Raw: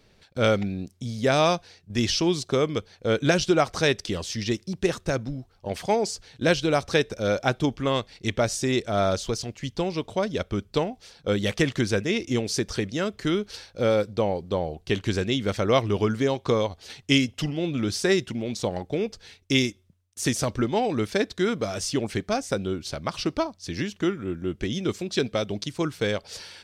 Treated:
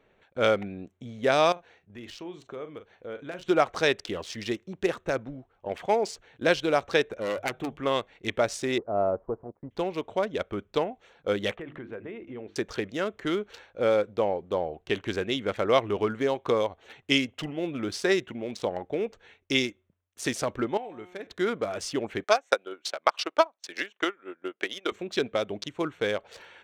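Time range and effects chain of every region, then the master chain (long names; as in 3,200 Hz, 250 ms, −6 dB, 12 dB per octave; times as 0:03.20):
0:01.52–0:03.46: double-tracking delay 40 ms −11.5 dB + downward compressor 2 to 1, threshold −43 dBFS
0:07.19–0:07.77: phase distortion by the signal itself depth 0.46 ms + mains-hum notches 50/100/150 Hz + downward compressor 3 to 1, threshold −24 dBFS
0:08.78–0:09.71: mu-law and A-law mismatch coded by A + inverse Chebyshev low-pass filter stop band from 3,500 Hz, stop band 60 dB + downward expander −51 dBFS
0:11.55–0:12.56: mains-hum notches 50/100/150/200/250/300/350 Hz + downward compressor, threshold −30 dBFS + high-frequency loss of the air 420 metres
0:20.77–0:21.27: high-shelf EQ 7,200 Hz +11.5 dB + tuned comb filter 180 Hz, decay 1.2 s, mix 80%
0:22.24–0:24.92: high-pass filter 600 Hz + transient designer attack +10 dB, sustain −11 dB
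whole clip: adaptive Wiener filter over 9 samples; bass and treble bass −12 dB, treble −5 dB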